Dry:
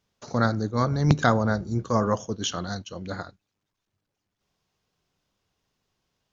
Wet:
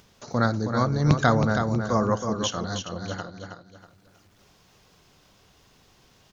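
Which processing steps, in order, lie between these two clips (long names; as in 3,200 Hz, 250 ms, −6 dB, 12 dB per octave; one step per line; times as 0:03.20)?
upward compression, threshold −43 dBFS
repeating echo 320 ms, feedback 30%, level −6.5 dB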